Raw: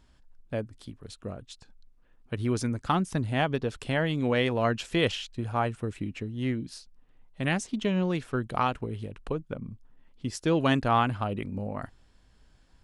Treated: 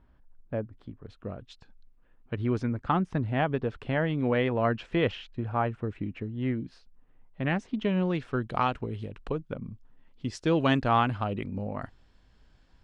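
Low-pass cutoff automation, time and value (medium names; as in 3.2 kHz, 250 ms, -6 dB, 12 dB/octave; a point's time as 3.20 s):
0.98 s 1.6 kHz
1.45 s 3.7 kHz
2.80 s 2.2 kHz
7.54 s 2.2 kHz
8.56 s 5.3 kHz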